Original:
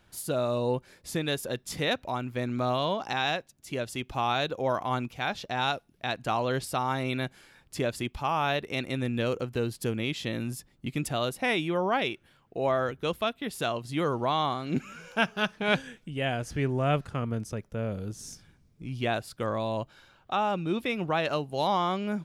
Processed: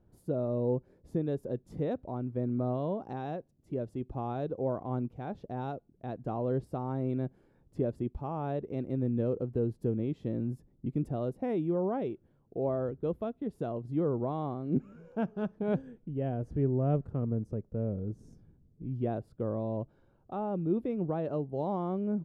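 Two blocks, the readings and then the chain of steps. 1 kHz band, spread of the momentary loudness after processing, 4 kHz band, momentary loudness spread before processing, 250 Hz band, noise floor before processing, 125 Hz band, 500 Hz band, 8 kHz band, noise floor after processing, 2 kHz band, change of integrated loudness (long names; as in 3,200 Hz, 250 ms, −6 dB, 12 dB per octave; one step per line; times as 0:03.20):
−10.5 dB, 8 LU, below −25 dB, 8 LU, 0.0 dB, −64 dBFS, 0.0 dB, −3.0 dB, below −25 dB, −67 dBFS, −22.0 dB, −4.0 dB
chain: drawn EQ curve 430 Hz 0 dB, 2,400 Hz −27 dB, 4,500 Hz −30 dB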